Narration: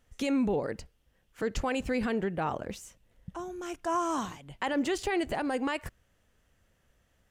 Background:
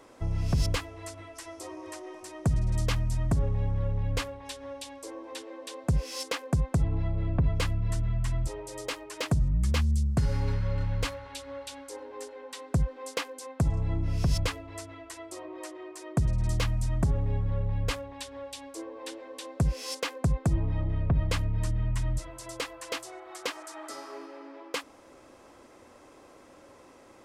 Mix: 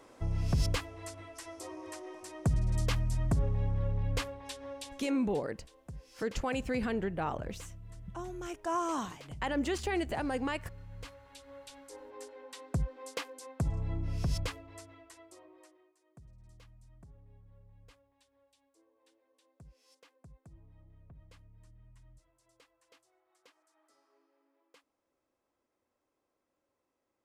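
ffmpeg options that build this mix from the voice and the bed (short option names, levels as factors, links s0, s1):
-filter_complex "[0:a]adelay=4800,volume=0.708[s0];[1:a]volume=3.55,afade=t=out:st=4.84:d=0.63:silence=0.141254,afade=t=in:st=10.84:d=1.42:silence=0.199526,afade=t=out:st=14.3:d=1.64:silence=0.0630957[s1];[s0][s1]amix=inputs=2:normalize=0"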